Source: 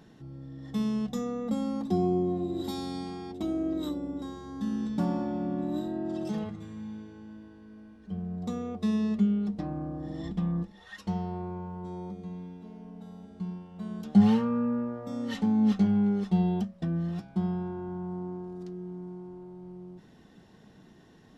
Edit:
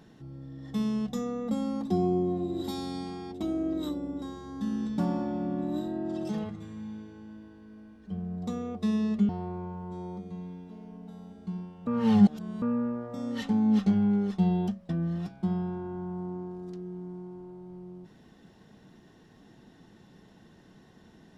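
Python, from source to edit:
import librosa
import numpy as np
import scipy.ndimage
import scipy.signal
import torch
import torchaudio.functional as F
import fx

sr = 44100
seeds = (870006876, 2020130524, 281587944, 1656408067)

y = fx.edit(x, sr, fx.cut(start_s=9.29, length_s=1.93),
    fx.reverse_span(start_s=13.8, length_s=0.75), tone=tone)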